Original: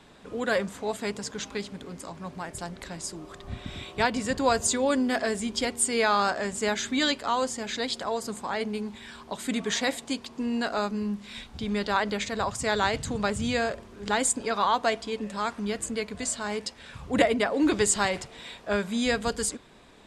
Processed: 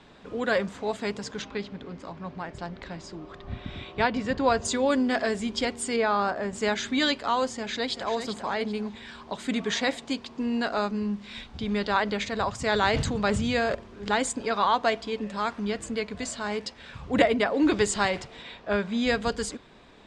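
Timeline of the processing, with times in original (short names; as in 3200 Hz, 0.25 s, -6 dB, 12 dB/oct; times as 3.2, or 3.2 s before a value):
1.42–4.65 air absorption 110 m
5.96–6.53 high shelf 2000 Hz -11 dB
7.51–8.1 echo throw 0.39 s, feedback 30%, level -8 dB
12.58–13.75 sustainer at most 25 dB/s
18.42–19.07 air absorption 75 m
whole clip: LPF 5400 Hz 12 dB/oct; gain +1 dB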